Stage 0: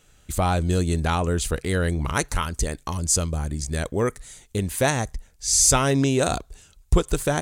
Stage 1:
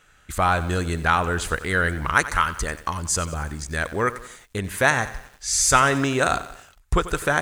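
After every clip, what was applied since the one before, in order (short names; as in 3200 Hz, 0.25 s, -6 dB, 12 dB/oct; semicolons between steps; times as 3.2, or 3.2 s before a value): bell 1500 Hz +14 dB 1.6 oct; lo-fi delay 91 ms, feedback 55%, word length 6-bit, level -14.5 dB; gain -4 dB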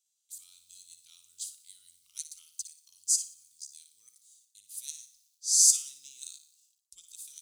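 inverse Chebyshev high-pass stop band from 1800 Hz, stop band 50 dB; flutter echo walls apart 10 m, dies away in 0.43 s; upward expander 1.5:1, over -45 dBFS; gain +1 dB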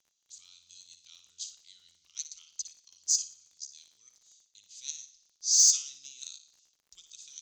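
elliptic low-pass 6600 Hz, stop band 40 dB; crackle 37/s -58 dBFS; in parallel at -3.5 dB: overloaded stage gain 22 dB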